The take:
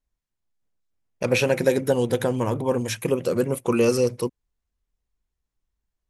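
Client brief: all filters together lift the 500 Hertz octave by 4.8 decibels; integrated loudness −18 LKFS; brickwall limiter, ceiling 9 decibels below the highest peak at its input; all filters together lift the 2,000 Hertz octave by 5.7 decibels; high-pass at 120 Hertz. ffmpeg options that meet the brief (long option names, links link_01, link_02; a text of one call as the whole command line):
ffmpeg -i in.wav -af "highpass=120,equalizer=frequency=500:width_type=o:gain=5,equalizer=frequency=2000:width_type=o:gain=7.5,volume=4.5dB,alimiter=limit=-7dB:level=0:latency=1" out.wav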